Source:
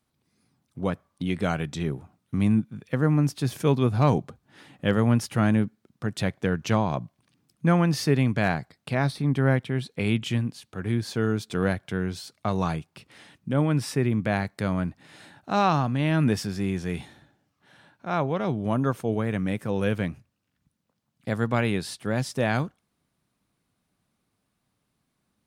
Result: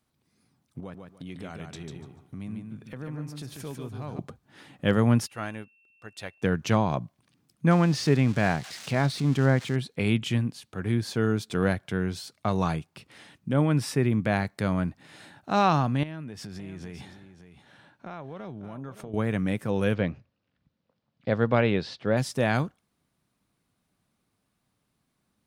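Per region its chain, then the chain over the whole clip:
0:00.80–0:04.19: downward compressor 2.5 to 1, threshold −42 dBFS + repeating echo 146 ms, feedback 25%, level −5 dB
0:05.26–0:06.41: parametric band 160 Hz −15 dB 2 octaves + steady tone 2,700 Hz −48 dBFS + expander for the loud parts, over −44 dBFS
0:07.71–0:09.76: spike at every zero crossing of −22 dBFS + high-frequency loss of the air 98 metres
0:16.03–0:19.14: high-shelf EQ 9,100 Hz −7.5 dB + downward compressor 10 to 1, threshold −35 dBFS + single-tap delay 568 ms −11.5 dB
0:19.94–0:22.17: low-pass filter 4,900 Hz 24 dB per octave + parametric band 520 Hz +6.5 dB 0.61 octaves
whole clip: no processing

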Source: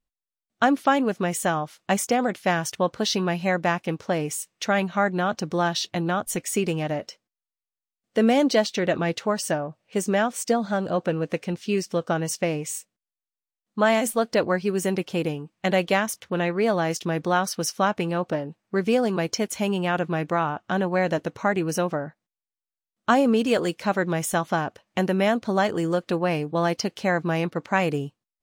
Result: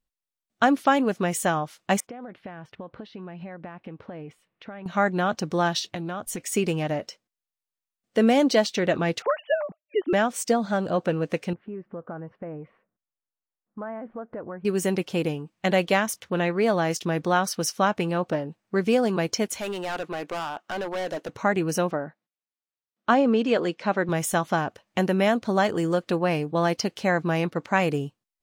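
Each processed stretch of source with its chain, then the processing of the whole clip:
0:02.00–0:04.86: downward compressor 12 to 1, threshold −33 dBFS + high-frequency loss of the air 450 metres
0:05.79–0:06.52: downward compressor 10 to 1, threshold −27 dBFS + highs frequency-modulated by the lows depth 0.1 ms
0:09.22–0:10.13: three sine waves on the formant tracks + downward expander −55 dBFS
0:11.53–0:14.65: inverse Chebyshev low-pass filter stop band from 6,500 Hz, stop band 70 dB + downward compressor 3 to 1, threshold −36 dBFS
0:19.59–0:21.29: high-pass filter 350 Hz + hard clipping −26 dBFS
0:21.91–0:24.09: high-pass filter 170 Hz + high-frequency loss of the air 130 metres
whole clip: no processing

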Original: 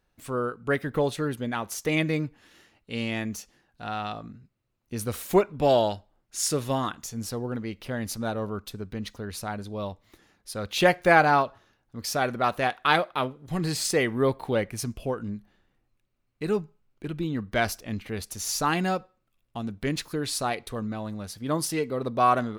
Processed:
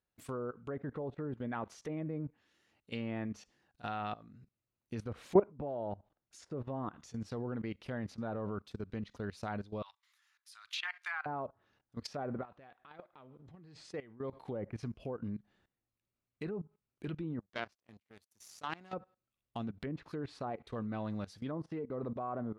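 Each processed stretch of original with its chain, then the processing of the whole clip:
0:09.82–0:11.26: inverse Chebyshev high-pass filter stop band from 560 Hz + downward compressor 2.5 to 1, threshold −28 dBFS
0:12.41–0:14.33: downward compressor 2 to 1, threshold −41 dBFS + head-to-tape spacing loss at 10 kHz 24 dB
0:17.39–0:18.93: high-pass filter 100 Hz 6 dB per octave + power curve on the samples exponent 2
whole clip: treble cut that deepens with the level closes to 840 Hz, closed at −23.5 dBFS; high-pass filter 52 Hz 12 dB per octave; output level in coarse steps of 18 dB; level −2 dB

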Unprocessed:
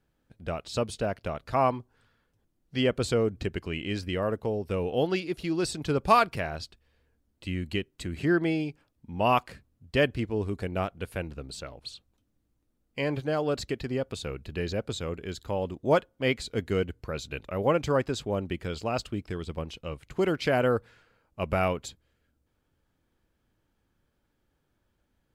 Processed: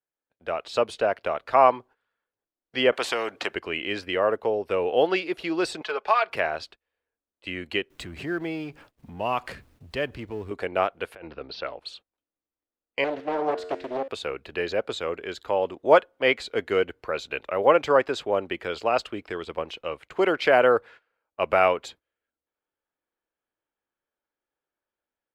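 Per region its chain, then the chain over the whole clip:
0:02.92–0:03.54: high-pass filter 230 Hz + high-shelf EQ 8,300 Hz −4.5 dB + every bin compressed towards the loudest bin 2 to 1
0:05.81–0:06.30: three-way crossover with the lows and the highs turned down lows −21 dB, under 530 Hz, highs −19 dB, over 6,300 Hz + comb filter 4.7 ms, depth 57% + downward compressor 2 to 1, threshold −30 dBFS
0:07.90–0:10.51: mu-law and A-law mismatch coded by mu + bass and treble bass +14 dB, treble +6 dB + downward compressor 2 to 1, threshold −35 dBFS
0:11.15–0:11.79: Butterworth low-pass 5,500 Hz 72 dB per octave + compressor whose output falls as the input rises −37 dBFS, ratio −0.5 + one half of a high-frequency compander decoder only
0:13.04–0:14.08: parametric band 320 Hz +10.5 dB 1 octave + tuned comb filter 90 Hz, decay 1.2 s, mix 70% + highs frequency-modulated by the lows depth 0.74 ms
whole clip: noise gate −49 dBFS, range −18 dB; three-way crossover with the lows and the highs turned down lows −21 dB, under 370 Hz, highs −13 dB, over 3,500 Hz; automatic gain control gain up to 7 dB; level +1.5 dB

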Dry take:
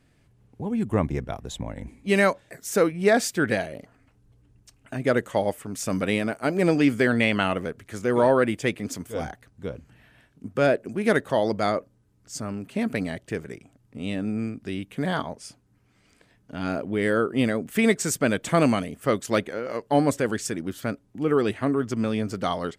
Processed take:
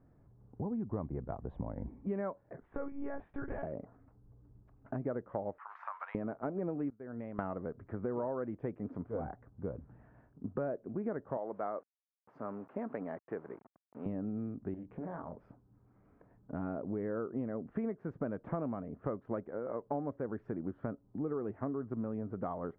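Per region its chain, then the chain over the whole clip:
0:02.60–0:03.63: spectral tilt +2 dB per octave + downward compressor 4 to 1, threshold −28 dBFS + one-pitch LPC vocoder at 8 kHz 280 Hz
0:05.58–0:06.15: one scale factor per block 5 bits + elliptic high-pass filter 920 Hz, stop band 70 dB + multiband upward and downward compressor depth 100%
0:06.90–0:07.39: downward expander −19 dBFS + downward compressor 2.5 to 1, threshold −40 dBFS
0:11.37–0:14.06: hold until the input has moved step −44 dBFS + meter weighting curve A
0:14.74–0:15.34: double-tracking delay 24 ms −5 dB + downward compressor 3 to 1, threshold −40 dBFS + highs frequency-modulated by the lows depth 0.25 ms
whole clip: low-pass filter 1,200 Hz 24 dB per octave; downward compressor 6 to 1, threshold −33 dBFS; level −1.5 dB

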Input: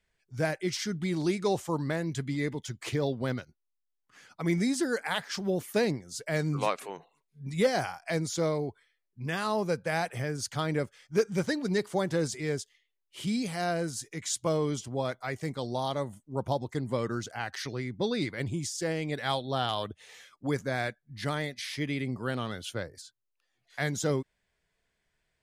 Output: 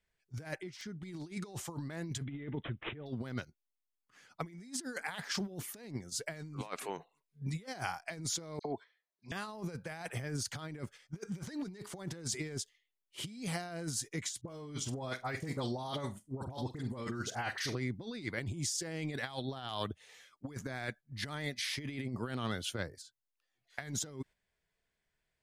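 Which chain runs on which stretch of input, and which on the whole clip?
0:00.55–0:01.03: high-shelf EQ 3,500 Hz −10 dB + downward compressor 8 to 1, threshold −41 dBFS + wrap-around overflow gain 34 dB
0:02.24–0:03.06: notch filter 1,000 Hz, Q 7.1 + dynamic equaliser 3,500 Hz, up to −6 dB, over −52 dBFS, Q 0.81 + bad sample-rate conversion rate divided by 6×, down none, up filtered
0:08.59–0:09.32: loudspeaker in its box 220–6,400 Hz, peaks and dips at 660 Hz +9 dB, 1,000 Hz +7 dB, 1,700 Hz +4 dB, 3,900 Hz +7 dB + all-pass dispersion lows, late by 58 ms, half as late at 2,700 Hz
0:14.41–0:17.75: all-pass dispersion highs, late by 42 ms, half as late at 1,300 Hz + flutter between parallel walls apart 8.1 metres, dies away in 0.2 s
whole clip: noise gate −45 dBFS, range −7 dB; dynamic equaliser 530 Hz, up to −5 dB, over −41 dBFS, Q 2.4; compressor whose output falls as the input rises −35 dBFS, ratio −0.5; level −3.5 dB

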